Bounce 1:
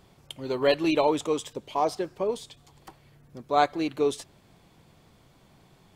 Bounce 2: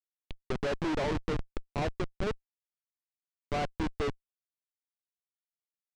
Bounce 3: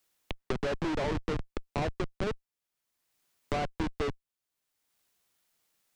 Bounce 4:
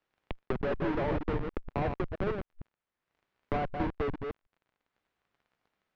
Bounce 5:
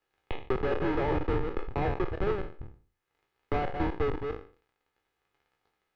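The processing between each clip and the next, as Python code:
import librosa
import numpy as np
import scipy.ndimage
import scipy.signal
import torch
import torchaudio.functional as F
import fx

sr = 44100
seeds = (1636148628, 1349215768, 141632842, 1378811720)

y1 = fx.high_shelf(x, sr, hz=9500.0, db=-4.0)
y1 = fx.schmitt(y1, sr, flips_db=-24.0)
y1 = fx.air_absorb(y1, sr, metres=120.0)
y2 = fx.band_squash(y1, sr, depth_pct=70)
y3 = fx.reverse_delay(y2, sr, ms=154, wet_db=-5)
y3 = fx.dmg_crackle(y3, sr, seeds[0], per_s=29.0, level_db=-50.0)
y3 = scipy.signal.sosfilt(scipy.signal.butter(2, 2100.0, 'lowpass', fs=sr, output='sos'), y3)
y4 = fx.spec_trails(y3, sr, decay_s=0.42)
y4 = y4 + 0.45 * np.pad(y4, (int(2.4 * sr / 1000.0), 0))[:len(y4)]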